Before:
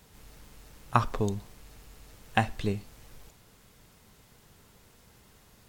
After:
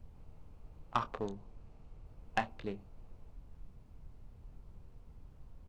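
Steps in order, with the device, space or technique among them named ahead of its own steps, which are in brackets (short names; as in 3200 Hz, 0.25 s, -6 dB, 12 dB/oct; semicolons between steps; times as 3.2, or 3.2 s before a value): Wiener smoothing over 25 samples; aircraft cabin announcement (BPF 490–3400 Hz; soft clip -14 dBFS, distortion -12 dB; brown noise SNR 17 dB); doubler 26 ms -12 dB; 1.27–2.06 LPF 9400 Hz; tone controls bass +13 dB, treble +2 dB; gain -4.5 dB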